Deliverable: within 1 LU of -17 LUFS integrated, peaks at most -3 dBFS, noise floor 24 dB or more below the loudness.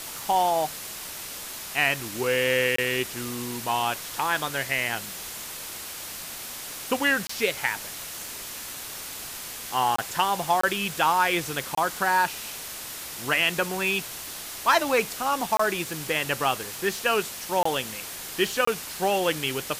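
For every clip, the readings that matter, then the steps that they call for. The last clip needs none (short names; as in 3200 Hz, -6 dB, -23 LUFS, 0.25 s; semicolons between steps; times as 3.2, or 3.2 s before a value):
dropouts 8; longest dropout 24 ms; noise floor -37 dBFS; noise floor target -51 dBFS; loudness -26.5 LUFS; peak -9.0 dBFS; loudness target -17.0 LUFS
-> interpolate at 2.76/7.27/9.96/10.61/11.75/15.57/17.63/18.65, 24 ms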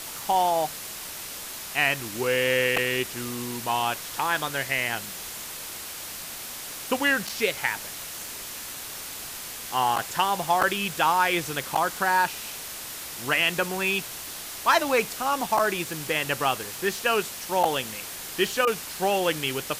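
dropouts 0; noise floor -37 dBFS; noise floor target -50 dBFS
-> denoiser 13 dB, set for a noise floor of -37 dBFS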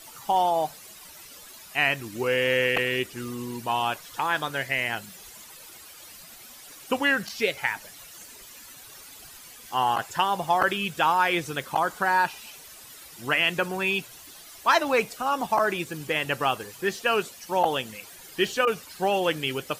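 noise floor -47 dBFS; noise floor target -50 dBFS
-> denoiser 6 dB, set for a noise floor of -47 dBFS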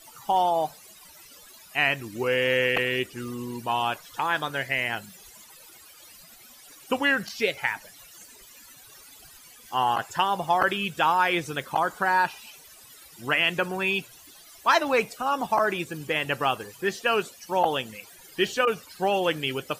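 noise floor -50 dBFS; loudness -25.5 LUFS; peak -8.0 dBFS; loudness target -17.0 LUFS
-> gain +8.5 dB; limiter -3 dBFS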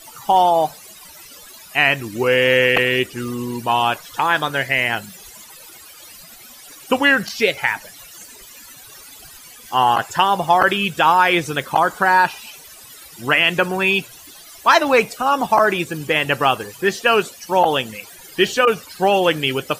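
loudness -17.5 LUFS; peak -3.0 dBFS; noise floor -42 dBFS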